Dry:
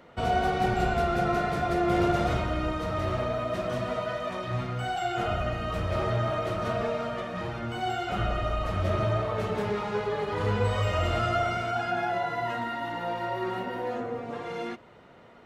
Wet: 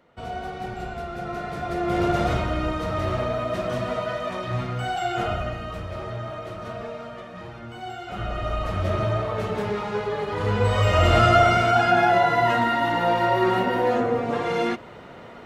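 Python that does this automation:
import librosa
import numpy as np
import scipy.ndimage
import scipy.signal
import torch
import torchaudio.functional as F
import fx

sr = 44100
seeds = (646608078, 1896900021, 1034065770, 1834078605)

y = fx.gain(x, sr, db=fx.line((1.13, -7.0), (2.21, 3.5), (5.21, 3.5), (5.96, -5.0), (8.01, -5.0), (8.54, 2.5), (10.42, 2.5), (11.18, 10.5)))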